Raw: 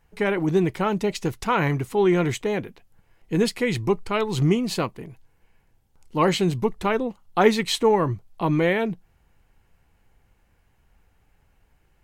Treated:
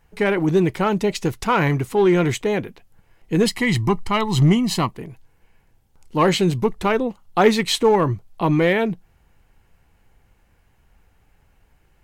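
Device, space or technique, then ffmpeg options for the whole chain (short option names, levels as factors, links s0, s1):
parallel distortion: -filter_complex "[0:a]asettb=1/sr,asplit=3[s0][s1][s2];[s0]atrim=end=3.464[s3];[s1]atrim=start=3.46:end=4.91,asetpts=PTS-STARTPTS,afade=t=in:d=0.004:c=qsin,afade=t=out:st=1.446:d=0.004:c=qsin,aecho=1:1:1:0.62,atrim=end_sample=63945[s4];[s2]atrim=start=4.906[s5];[s3][s4]acrossfade=d=0.004:c1=hsin:c2=qsin[s6];[s6][s5]acrossfade=d=0.004:c1=qsin:c2=hsin,asplit=2[s7][s8];[s8]asoftclip=type=hard:threshold=0.141,volume=0.562[s9];[s7][s9]amix=inputs=2:normalize=0"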